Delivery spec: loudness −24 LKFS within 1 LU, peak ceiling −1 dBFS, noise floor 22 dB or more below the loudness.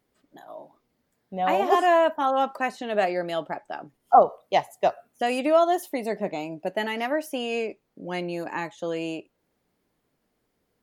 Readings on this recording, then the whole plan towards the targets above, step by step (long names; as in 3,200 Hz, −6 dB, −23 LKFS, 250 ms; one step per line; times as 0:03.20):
integrated loudness −25.0 LKFS; sample peak −4.0 dBFS; target loudness −24.0 LKFS
→ level +1 dB